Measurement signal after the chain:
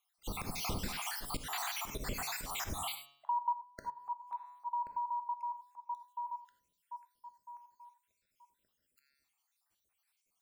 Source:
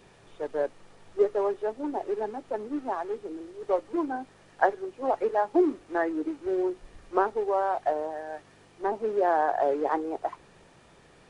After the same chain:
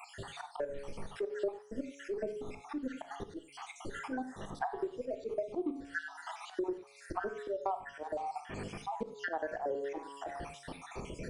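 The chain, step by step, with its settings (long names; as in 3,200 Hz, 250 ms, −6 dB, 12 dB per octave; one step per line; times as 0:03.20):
time-frequency cells dropped at random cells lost 69%
hum removal 140.1 Hz, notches 37
volume swells 223 ms
low-shelf EQ 250 Hz +5.5 dB
reverb whose tail is shaped and stops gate 120 ms flat, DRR 9.5 dB
downward compressor 4 to 1, threshold −51 dBFS
level +14.5 dB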